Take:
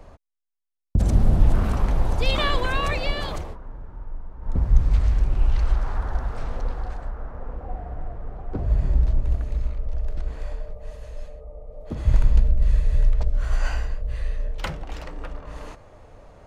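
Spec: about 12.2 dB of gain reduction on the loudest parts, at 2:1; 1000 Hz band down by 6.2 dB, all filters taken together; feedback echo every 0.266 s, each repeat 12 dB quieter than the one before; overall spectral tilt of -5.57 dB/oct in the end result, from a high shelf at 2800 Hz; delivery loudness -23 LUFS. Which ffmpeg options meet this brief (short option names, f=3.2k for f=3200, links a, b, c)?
-af "equalizer=f=1k:t=o:g=-8.5,highshelf=f=2.8k:g=4.5,acompressor=threshold=-33dB:ratio=2,aecho=1:1:266|532|798:0.251|0.0628|0.0157,volume=12.5dB"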